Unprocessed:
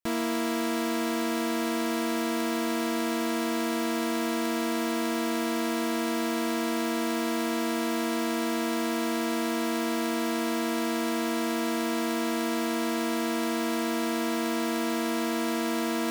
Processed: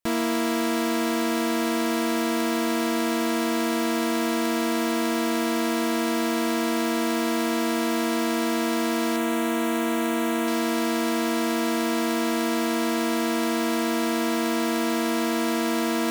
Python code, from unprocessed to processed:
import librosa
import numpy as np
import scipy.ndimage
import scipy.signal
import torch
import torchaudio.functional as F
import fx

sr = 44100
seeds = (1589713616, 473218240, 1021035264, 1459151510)

y = fx.peak_eq(x, sr, hz=4900.0, db=-12.5, octaves=0.44, at=(9.16, 10.48))
y = y * 10.0 ** (4.0 / 20.0)